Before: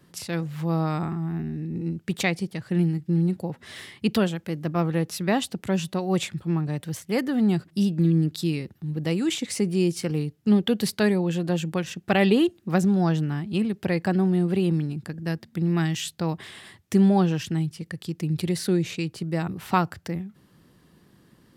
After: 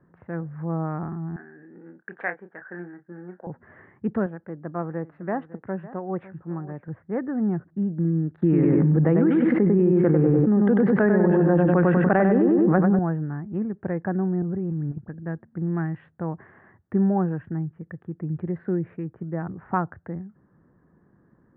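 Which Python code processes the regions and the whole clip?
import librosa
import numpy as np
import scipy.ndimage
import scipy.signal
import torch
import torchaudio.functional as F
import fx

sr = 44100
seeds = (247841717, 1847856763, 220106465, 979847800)

y = fx.chain(x, sr, fx.highpass(hz=530.0, slope=12),
    fx.peak_eq(hz=1600.0, db=14.0, octaves=0.41),
    fx.doubler(ms=28.0, db=-8), at=(1.36, 3.47))
y = fx.chain(y, sr, fx.steep_lowpass(hz=8400.0, slope=36),
    fx.low_shelf(hz=170.0, db=-10.0),
    fx.echo_single(ms=554, db=-16.5), at=(4.26, 6.88))
y = fx.chain(y, sr, fx.bandpass_edges(low_hz=150.0, high_hz=4300.0),
    fx.echo_filtered(ms=97, feedback_pct=41, hz=2900.0, wet_db=-3.5),
    fx.env_flatten(amount_pct=100), at=(8.42, 12.99))
y = fx.chain(y, sr, fx.low_shelf(hz=190.0, db=10.5),
    fx.level_steps(step_db=12),
    fx.dispersion(late='highs', ms=94.0, hz=3000.0), at=(14.42, 15.09))
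y = fx.wiener(y, sr, points=9)
y = scipy.signal.sosfilt(scipy.signal.ellip(4, 1.0, 80, 1700.0, 'lowpass', fs=sr, output='sos'), y)
y = F.gain(torch.from_numpy(y), -2.0).numpy()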